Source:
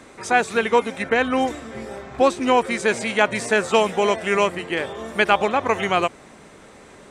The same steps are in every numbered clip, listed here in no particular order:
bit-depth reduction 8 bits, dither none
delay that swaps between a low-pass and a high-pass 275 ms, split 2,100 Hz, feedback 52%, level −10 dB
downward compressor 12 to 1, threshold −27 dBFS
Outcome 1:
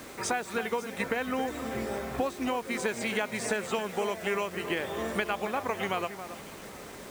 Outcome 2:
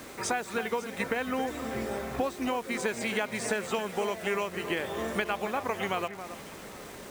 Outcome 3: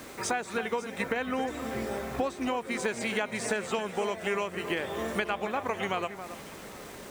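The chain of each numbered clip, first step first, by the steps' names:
downward compressor, then delay that swaps between a low-pass and a high-pass, then bit-depth reduction
downward compressor, then bit-depth reduction, then delay that swaps between a low-pass and a high-pass
bit-depth reduction, then downward compressor, then delay that swaps between a low-pass and a high-pass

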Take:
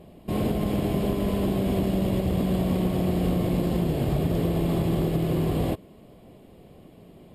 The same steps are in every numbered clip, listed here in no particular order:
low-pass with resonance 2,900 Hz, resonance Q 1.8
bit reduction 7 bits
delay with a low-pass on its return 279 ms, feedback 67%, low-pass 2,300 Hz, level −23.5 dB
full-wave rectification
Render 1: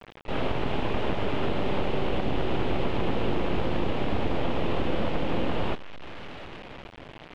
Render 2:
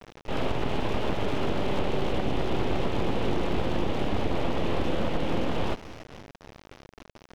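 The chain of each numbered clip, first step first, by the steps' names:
full-wave rectification, then delay with a low-pass on its return, then bit reduction, then low-pass with resonance
delay with a low-pass on its return, then bit reduction, then low-pass with resonance, then full-wave rectification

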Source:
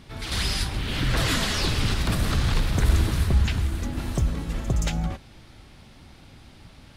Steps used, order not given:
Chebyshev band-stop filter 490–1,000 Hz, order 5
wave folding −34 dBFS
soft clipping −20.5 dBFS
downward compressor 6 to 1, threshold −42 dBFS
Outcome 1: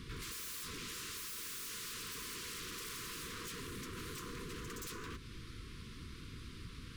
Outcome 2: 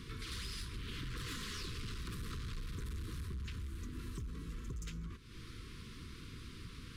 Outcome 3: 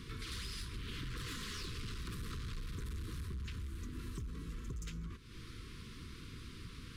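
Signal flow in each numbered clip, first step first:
wave folding, then Chebyshev band-stop filter, then soft clipping, then downward compressor
soft clipping, then downward compressor, then wave folding, then Chebyshev band-stop filter
soft clipping, then Chebyshev band-stop filter, then downward compressor, then wave folding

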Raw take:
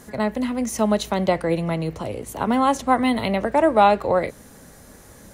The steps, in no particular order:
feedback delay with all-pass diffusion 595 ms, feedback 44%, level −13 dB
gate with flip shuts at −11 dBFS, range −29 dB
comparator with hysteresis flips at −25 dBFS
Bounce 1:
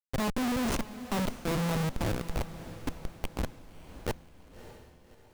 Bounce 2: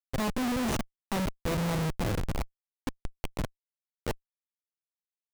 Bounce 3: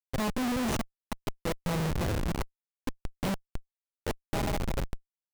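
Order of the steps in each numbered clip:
gate with flip, then comparator with hysteresis, then feedback delay with all-pass diffusion
gate with flip, then feedback delay with all-pass diffusion, then comparator with hysteresis
feedback delay with all-pass diffusion, then gate with flip, then comparator with hysteresis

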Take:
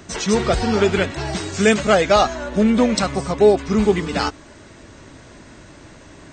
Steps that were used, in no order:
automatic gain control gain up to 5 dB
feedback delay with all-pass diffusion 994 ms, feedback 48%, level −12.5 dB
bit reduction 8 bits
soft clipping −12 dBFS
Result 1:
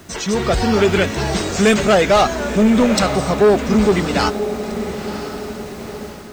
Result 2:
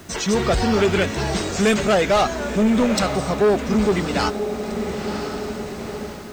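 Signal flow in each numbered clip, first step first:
feedback delay with all-pass diffusion, then soft clipping, then bit reduction, then automatic gain control
feedback delay with all-pass diffusion, then automatic gain control, then soft clipping, then bit reduction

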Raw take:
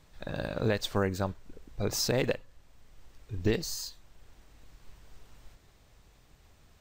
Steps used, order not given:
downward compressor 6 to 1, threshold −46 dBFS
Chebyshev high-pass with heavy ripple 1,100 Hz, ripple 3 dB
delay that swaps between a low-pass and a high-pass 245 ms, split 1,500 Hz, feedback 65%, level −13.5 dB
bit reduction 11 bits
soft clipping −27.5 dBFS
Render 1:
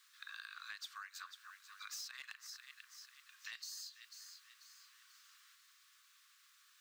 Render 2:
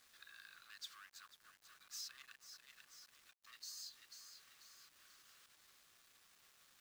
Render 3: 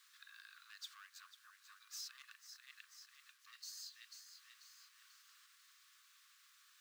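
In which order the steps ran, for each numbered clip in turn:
delay that swaps between a low-pass and a high-pass, then bit reduction, then Chebyshev high-pass with heavy ripple, then soft clipping, then downward compressor
soft clipping, then delay that swaps between a low-pass and a high-pass, then downward compressor, then Chebyshev high-pass with heavy ripple, then bit reduction
delay that swaps between a low-pass and a high-pass, then soft clipping, then downward compressor, then bit reduction, then Chebyshev high-pass with heavy ripple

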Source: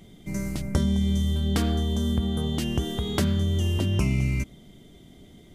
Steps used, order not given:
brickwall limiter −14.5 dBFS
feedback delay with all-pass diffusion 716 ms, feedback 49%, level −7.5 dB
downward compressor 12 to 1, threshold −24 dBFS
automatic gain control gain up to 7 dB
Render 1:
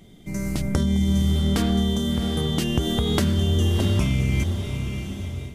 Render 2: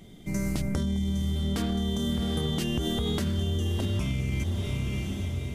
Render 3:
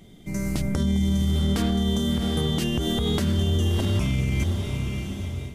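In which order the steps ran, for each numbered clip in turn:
brickwall limiter, then downward compressor, then feedback delay with all-pass diffusion, then automatic gain control
automatic gain control, then brickwall limiter, then feedback delay with all-pass diffusion, then downward compressor
downward compressor, then feedback delay with all-pass diffusion, then automatic gain control, then brickwall limiter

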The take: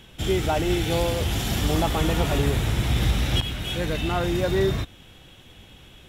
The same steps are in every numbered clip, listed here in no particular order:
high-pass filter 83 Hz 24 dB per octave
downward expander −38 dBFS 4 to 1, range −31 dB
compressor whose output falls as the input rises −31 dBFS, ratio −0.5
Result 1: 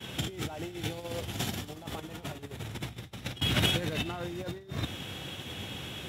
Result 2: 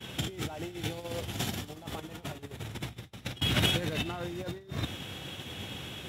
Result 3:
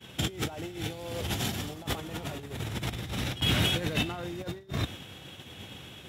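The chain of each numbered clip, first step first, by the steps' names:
compressor whose output falls as the input rises, then downward expander, then high-pass filter
compressor whose output falls as the input rises, then high-pass filter, then downward expander
high-pass filter, then compressor whose output falls as the input rises, then downward expander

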